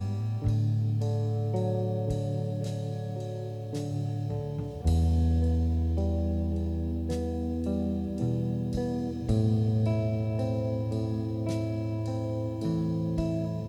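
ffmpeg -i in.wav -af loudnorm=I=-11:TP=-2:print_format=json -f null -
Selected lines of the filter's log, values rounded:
"input_i" : "-30.1",
"input_tp" : "-12.7",
"input_lra" : "2.5",
"input_thresh" : "-40.1",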